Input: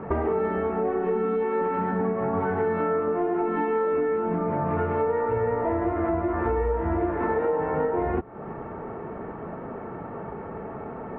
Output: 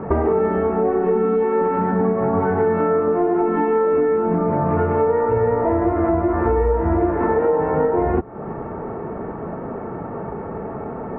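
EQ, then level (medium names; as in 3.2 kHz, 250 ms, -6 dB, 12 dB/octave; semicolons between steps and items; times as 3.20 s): treble shelf 2.2 kHz -11.5 dB; +7.5 dB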